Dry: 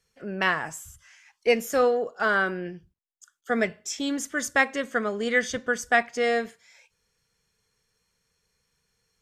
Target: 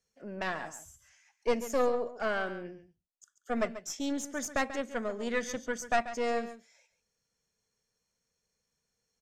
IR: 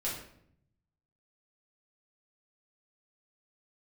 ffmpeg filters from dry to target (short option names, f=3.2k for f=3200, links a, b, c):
-af "equalizer=f=250:t=o:w=0.67:g=8,equalizer=f=630:t=o:w=0.67:g=9,equalizer=f=6.3k:t=o:w=0.67:g=7,aeval=exprs='(tanh(3.55*val(0)+0.75)-tanh(0.75))/3.55':c=same,aecho=1:1:138:0.224,volume=-7.5dB"